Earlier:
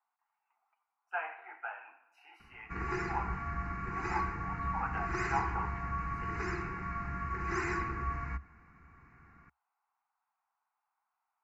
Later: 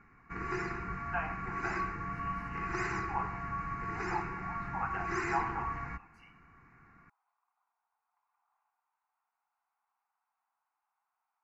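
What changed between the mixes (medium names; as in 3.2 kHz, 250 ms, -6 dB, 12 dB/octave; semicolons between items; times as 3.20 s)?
background: entry -2.40 s; master: add peaking EQ 69 Hz -10.5 dB 0.52 oct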